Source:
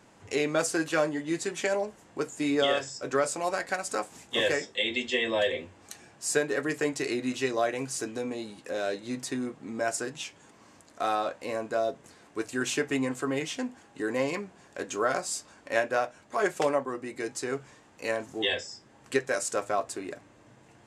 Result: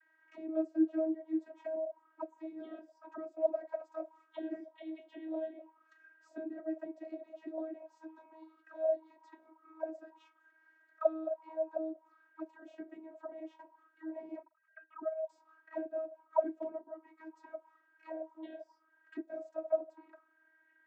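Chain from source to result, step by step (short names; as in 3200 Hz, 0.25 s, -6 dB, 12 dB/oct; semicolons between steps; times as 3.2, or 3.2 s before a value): 14.42–15.29 sine-wave speech; auto-wah 420–1800 Hz, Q 12, down, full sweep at -23.5 dBFS; vocoder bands 32, saw 318 Hz; gain +2.5 dB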